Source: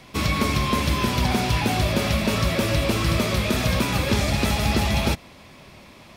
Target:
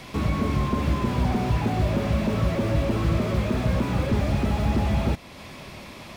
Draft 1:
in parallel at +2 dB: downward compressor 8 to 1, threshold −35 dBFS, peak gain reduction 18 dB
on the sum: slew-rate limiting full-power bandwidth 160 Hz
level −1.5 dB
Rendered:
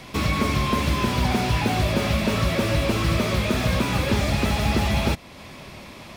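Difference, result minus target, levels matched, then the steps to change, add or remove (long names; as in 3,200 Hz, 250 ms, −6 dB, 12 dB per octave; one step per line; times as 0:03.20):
slew-rate limiting: distortion −10 dB
change: slew-rate limiting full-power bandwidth 45.5 Hz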